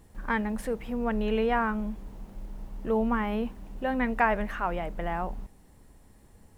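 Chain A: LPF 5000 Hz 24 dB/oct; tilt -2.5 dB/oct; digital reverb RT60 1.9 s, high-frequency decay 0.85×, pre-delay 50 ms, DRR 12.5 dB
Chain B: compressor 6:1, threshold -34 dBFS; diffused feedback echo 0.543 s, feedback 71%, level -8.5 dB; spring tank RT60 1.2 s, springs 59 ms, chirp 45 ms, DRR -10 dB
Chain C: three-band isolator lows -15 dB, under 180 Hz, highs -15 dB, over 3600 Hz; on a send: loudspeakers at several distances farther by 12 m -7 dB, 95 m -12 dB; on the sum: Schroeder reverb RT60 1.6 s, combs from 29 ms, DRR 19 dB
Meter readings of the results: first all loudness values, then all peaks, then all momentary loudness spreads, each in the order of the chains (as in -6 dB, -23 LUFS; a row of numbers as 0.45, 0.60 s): -26.0, -27.0, -29.5 LUFS; -10.5, -12.0, -9.0 dBFS; 12, 6, 13 LU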